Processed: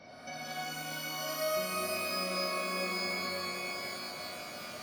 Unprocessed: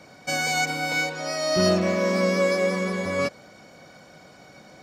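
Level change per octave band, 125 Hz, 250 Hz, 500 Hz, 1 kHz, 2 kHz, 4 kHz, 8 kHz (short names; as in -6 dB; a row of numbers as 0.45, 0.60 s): -17.5, -16.0, -13.0, -7.5, -9.5, -6.0, -7.5 dB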